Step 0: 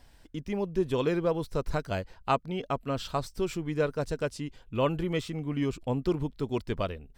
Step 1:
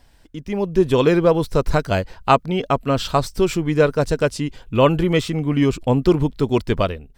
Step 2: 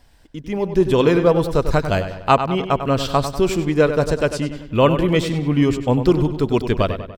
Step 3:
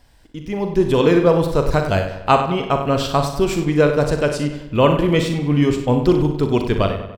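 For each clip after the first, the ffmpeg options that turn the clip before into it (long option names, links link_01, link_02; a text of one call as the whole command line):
ffmpeg -i in.wav -af "dynaudnorm=framelen=400:gausssize=3:maxgain=9.5dB,volume=3dB" out.wav
ffmpeg -i in.wav -filter_complex "[0:a]asplit=2[link_01][link_02];[link_02]adelay=97,lowpass=frequency=4800:poles=1,volume=-9.5dB,asplit=2[link_03][link_04];[link_04]adelay=97,lowpass=frequency=4800:poles=1,volume=0.52,asplit=2[link_05][link_06];[link_06]adelay=97,lowpass=frequency=4800:poles=1,volume=0.52,asplit=2[link_07][link_08];[link_08]adelay=97,lowpass=frequency=4800:poles=1,volume=0.52,asplit=2[link_09][link_10];[link_10]adelay=97,lowpass=frequency=4800:poles=1,volume=0.52,asplit=2[link_11][link_12];[link_12]adelay=97,lowpass=frequency=4800:poles=1,volume=0.52[link_13];[link_01][link_03][link_05][link_07][link_09][link_11][link_13]amix=inputs=7:normalize=0" out.wav
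ffmpeg -i in.wav -af "aecho=1:1:41|61:0.316|0.299" out.wav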